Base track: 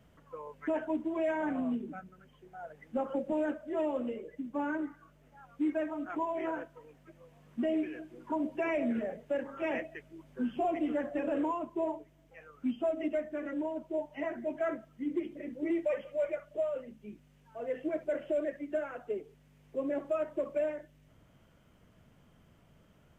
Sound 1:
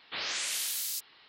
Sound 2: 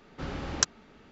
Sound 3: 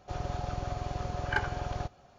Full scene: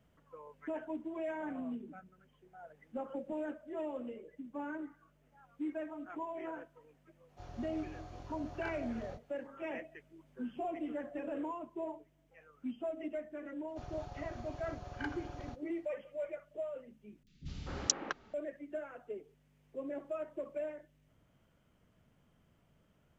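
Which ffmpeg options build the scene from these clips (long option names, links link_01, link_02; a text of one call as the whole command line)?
ffmpeg -i bed.wav -i cue0.wav -i cue1.wav -i cue2.wav -filter_complex "[3:a]asplit=2[link_01][link_02];[0:a]volume=-7.5dB[link_03];[link_01]flanger=delay=20:depth=5:speed=1[link_04];[2:a]acrossover=split=210|2700[link_05][link_06][link_07];[link_07]adelay=40[link_08];[link_06]adelay=250[link_09];[link_05][link_09][link_08]amix=inputs=3:normalize=0[link_10];[link_03]asplit=2[link_11][link_12];[link_11]atrim=end=17.234[link_13];[link_10]atrim=end=1.11,asetpts=PTS-STARTPTS,volume=-4.5dB[link_14];[link_12]atrim=start=18.336[link_15];[link_04]atrim=end=2.18,asetpts=PTS-STARTPTS,volume=-11dB,afade=type=in:duration=0.004:curve=hsin,afade=type=out:start_time=2.176:duration=0.004:curve=hsin,adelay=7290[link_16];[link_02]atrim=end=2.18,asetpts=PTS-STARTPTS,volume=-12dB,afade=type=in:duration=0.004:curve=hsin,afade=type=out:start_time=2.176:duration=0.004:curve=hsin,adelay=13680[link_17];[link_13][link_14]acrossfade=duration=0.004:curve1=hsin:curve2=hsin[link_18];[link_18][link_15]acrossfade=duration=0.004:curve1=hsin:curve2=hsin[link_19];[link_19][link_16][link_17]amix=inputs=3:normalize=0" out.wav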